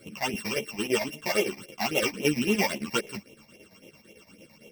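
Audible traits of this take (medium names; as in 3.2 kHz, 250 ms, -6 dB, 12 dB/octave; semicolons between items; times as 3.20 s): a buzz of ramps at a fixed pitch in blocks of 16 samples; phasing stages 8, 3.7 Hz, lowest notch 390–1500 Hz; chopped level 8.9 Hz, depth 60%, duty 65%; a shimmering, thickened sound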